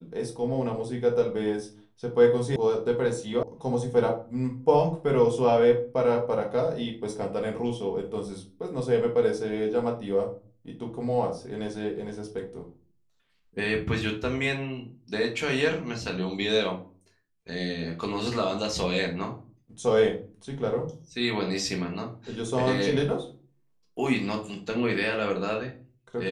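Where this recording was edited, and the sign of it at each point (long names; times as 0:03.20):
0:02.56: cut off before it has died away
0:03.43: cut off before it has died away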